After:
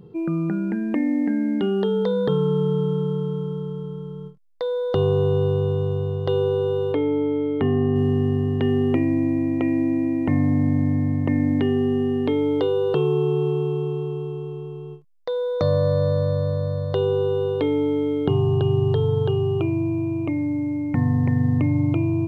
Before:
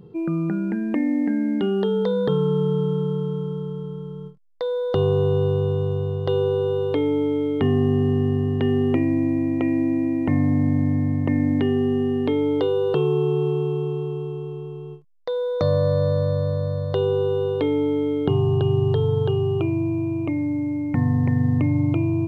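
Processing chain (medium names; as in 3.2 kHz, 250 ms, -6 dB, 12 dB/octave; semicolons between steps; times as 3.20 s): 6.92–7.96 s: tone controls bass -2 dB, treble -15 dB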